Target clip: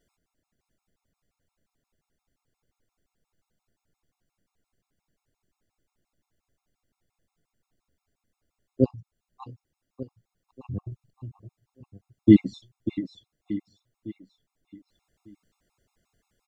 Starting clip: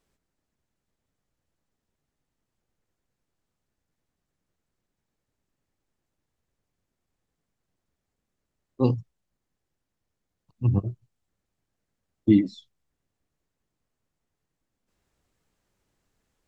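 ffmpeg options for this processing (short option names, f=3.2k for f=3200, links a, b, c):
-filter_complex "[0:a]asettb=1/sr,asplit=3[a][b][c];[a]atrim=end=8.844[d];[b]atrim=start=8.84:end=10.92,asetpts=PTS-STARTPTS,afade=t=in:d=0.004:c=qsin,afade=t=out:st=2.076:d=0.004:c=qsin,acompressor=threshold=-33dB:ratio=5[e];[c]atrim=start=10.916[f];[d][e]acrossfade=d=0.004:c1=hsin:c2=qsin[g];[g][f]acrossfade=d=0.004:c1=qsin:c2=hsin,aecho=1:1:593|1186|1779|2372|2965:0.355|0.156|0.0687|0.0302|0.0133,afftfilt=real='re*gt(sin(2*PI*5.7*pts/sr)*(1-2*mod(floor(b*sr/1024/700),2)),0)':imag='im*gt(sin(2*PI*5.7*pts/sr)*(1-2*mod(floor(b*sr/1024/700),2)),0)':win_size=1024:overlap=0.75,volume=4.5dB"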